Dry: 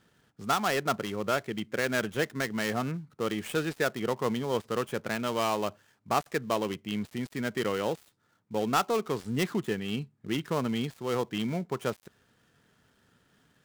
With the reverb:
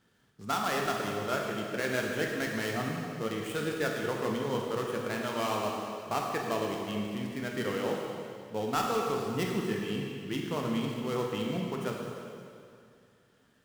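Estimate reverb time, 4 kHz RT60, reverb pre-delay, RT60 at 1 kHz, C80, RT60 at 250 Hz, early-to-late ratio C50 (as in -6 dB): 2.4 s, 2.2 s, 7 ms, 2.4 s, 2.5 dB, 2.4 s, 1.0 dB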